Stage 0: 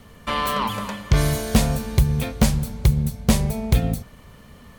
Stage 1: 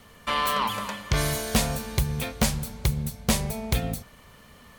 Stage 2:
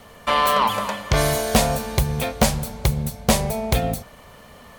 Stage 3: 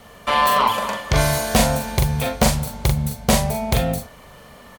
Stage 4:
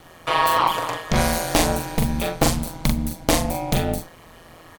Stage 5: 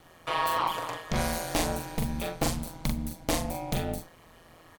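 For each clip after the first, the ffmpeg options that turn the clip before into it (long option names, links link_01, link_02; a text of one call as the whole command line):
ffmpeg -i in.wav -af "lowshelf=frequency=480:gain=-8.5" out.wav
ffmpeg -i in.wav -af "equalizer=frequency=660:width=1.2:gain=7.5,volume=4dB" out.wav
ffmpeg -i in.wav -filter_complex "[0:a]asplit=2[link_01][link_02];[link_02]adelay=42,volume=-4dB[link_03];[link_01][link_03]amix=inputs=2:normalize=0" out.wav
ffmpeg -i in.wav -af "aeval=exprs='val(0)*sin(2*PI*84*n/s)':channel_layout=same,volume=1dB" out.wav
ffmpeg -i in.wav -af "asoftclip=type=tanh:threshold=-4.5dB,volume=-8.5dB" out.wav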